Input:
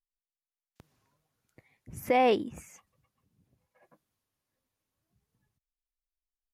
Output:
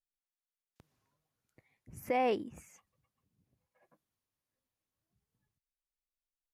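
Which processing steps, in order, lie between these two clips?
0:01.90–0:02.53: parametric band 3,600 Hz −8 dB 0.24 octaves
level −6.5 dB

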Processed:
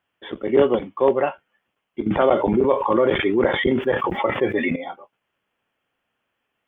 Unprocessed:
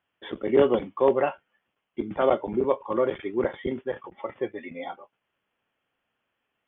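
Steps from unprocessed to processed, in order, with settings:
0:02.06–0:04.76: envelope flattener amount 70%
level +3 dB

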